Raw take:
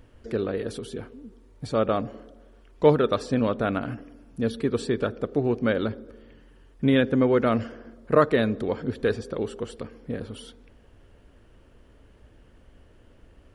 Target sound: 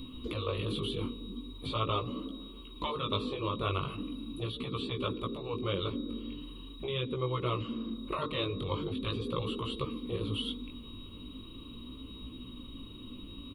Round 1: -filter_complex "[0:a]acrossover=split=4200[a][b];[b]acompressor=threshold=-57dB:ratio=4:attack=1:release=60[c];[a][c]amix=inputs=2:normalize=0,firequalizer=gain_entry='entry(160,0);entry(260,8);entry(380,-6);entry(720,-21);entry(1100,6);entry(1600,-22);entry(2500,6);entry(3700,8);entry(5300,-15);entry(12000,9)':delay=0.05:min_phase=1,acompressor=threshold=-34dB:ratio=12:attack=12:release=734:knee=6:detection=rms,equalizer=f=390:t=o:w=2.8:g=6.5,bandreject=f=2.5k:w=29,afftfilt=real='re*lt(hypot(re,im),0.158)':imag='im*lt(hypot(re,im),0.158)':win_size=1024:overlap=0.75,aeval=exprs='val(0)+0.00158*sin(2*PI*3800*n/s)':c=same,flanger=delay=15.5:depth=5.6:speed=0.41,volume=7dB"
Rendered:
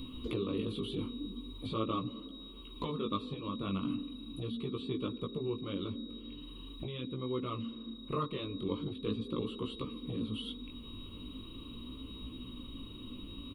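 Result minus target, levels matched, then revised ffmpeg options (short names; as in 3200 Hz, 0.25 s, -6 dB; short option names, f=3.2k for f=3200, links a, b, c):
compressor: peak gain reduction +9.5 dB
-filter_complex "[0:a]acrossover=split=4200[a][b];[b]acompressor=threshold=-57dB:ratio=4:attack=1:release=60[c];[a][c]amix=inputs=2:normalize=0,firequalizer=gain_entry='entry(160,0);entry(260,8);entry(380,-6);entry(720,-21);entry(1100,6);entry(1600,-22);entry(2500,6);entry(3700,8);entry(5300,-15);entry(12000,9)':delay=0.05:min_phase=1,acompressor=threshold=-23.5dB:ratio=12:attack=12:release=734:knee=6:detection=rms,equalizer=f=390:t=o:w=2.8:g=6.5,bandreject=f=2.5k:w=29,afftfilt=real='re*lt(hypot(re,im),0.158)':imag='im*lt(hypot(re,im),0.158)':win_size=1024:overlap=0.75,aeval=exprs='val(0)+0.00158*sin(2*PI*3800*n/s)':c=same,flanger=delay=15.5:depth=5.6:speed=0.41,volume=7dB"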